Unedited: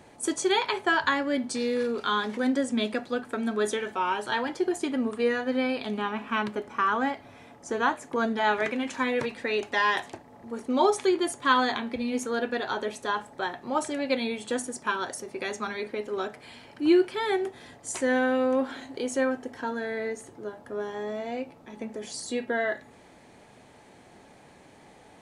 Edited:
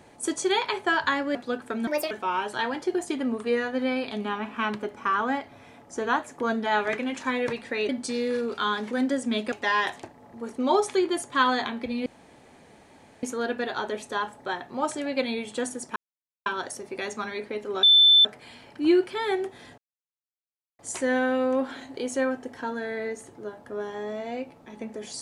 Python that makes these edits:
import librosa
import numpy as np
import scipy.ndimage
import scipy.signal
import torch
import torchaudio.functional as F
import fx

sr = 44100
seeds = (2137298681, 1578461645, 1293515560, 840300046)

y = fx.edit(x, sr, fx.move(start_s=1.35, length_s=1.63, to_s=9.62),
    fx.speed_span(start_s=3.5, length_s=0.34, speed=1.42),
    fx.insert_room_tone(at_s=12.16, length_s=1.17),
    fx.insert_silence(at_s=14.89, length_s=0.5),
    fx.insert_tone(at_s=16.26, length_s=0.42, hz=3530.0, db=-12.5),
    fx.insert_silence(at_s=17.79, length_s=1.01), tone=tone)